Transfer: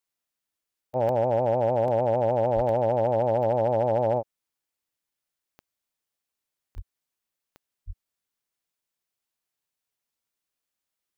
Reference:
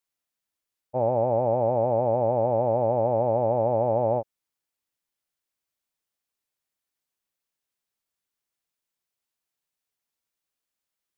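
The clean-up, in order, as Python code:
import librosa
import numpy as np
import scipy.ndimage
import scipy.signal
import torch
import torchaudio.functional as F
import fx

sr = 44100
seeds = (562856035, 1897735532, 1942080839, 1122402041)

y = fx.fix_declip(x, sr, threshold_db=-15.5)
y = fx.fix_declick_ar(y, sr, threshold=10.0)
y = fx.fix_deplosive(y, sr, at_s=(2.55, 6.75, 7.86))
y = fx.fix_interpolate(y, sr, at_s=(1.09, 1.88, 2.69, 6.78), length_ms=1.5)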